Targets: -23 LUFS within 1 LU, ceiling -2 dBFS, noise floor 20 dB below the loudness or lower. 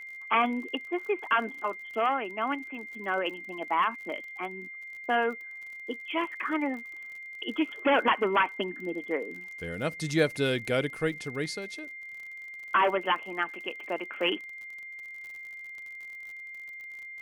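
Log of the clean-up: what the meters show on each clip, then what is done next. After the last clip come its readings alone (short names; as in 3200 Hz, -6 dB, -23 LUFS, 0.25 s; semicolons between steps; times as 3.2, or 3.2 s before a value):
ticks 47/s; steady tone 2100 Hz; tone level -40 dBFS; loudness -31.0 LUFS; peak -11.5 dBFS; loudness target -23.0 LUFS
-> de-click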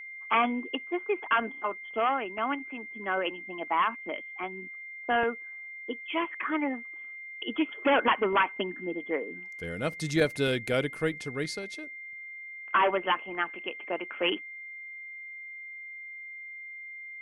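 ticks 0/s; steady tone 2100 Hz; tone level -40 dBFS
-> notch 2100 Hz, Q 30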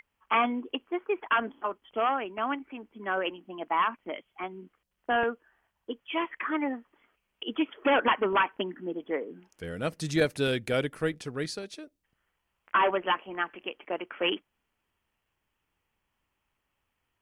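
steady tone none; loudness -30.0 LUFS; peak -12.5 dBFS; loudness target -23.0 LUFS
-> gain +7 dB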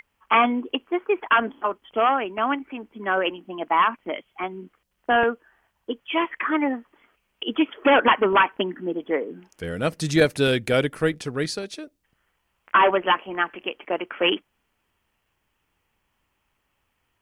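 loudness -23.0 LUFS; peak -5.5 dBFS; noise floor -74 dBFS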